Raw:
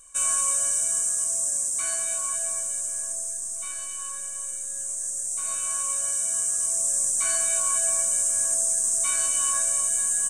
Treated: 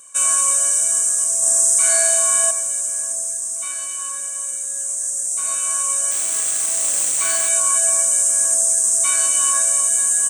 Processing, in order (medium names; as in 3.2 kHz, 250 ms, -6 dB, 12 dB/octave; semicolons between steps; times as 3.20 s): 6.11–7.49 s: median filter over 3 samples; high-pass 220 Hz 12 dB/octave; 1.38–2.51 s: flutter echo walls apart 7 m, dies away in 1.3 s; trim +7 dB